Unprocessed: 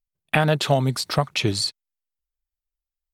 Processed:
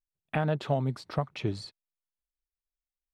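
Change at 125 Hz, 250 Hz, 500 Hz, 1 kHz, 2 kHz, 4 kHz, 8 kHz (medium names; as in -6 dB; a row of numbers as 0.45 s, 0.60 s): -7.5 dB, -7.5 dB, -8.5 dB, -9.5 dB, -13.5 dB, -19.0 dB, -23.5 dB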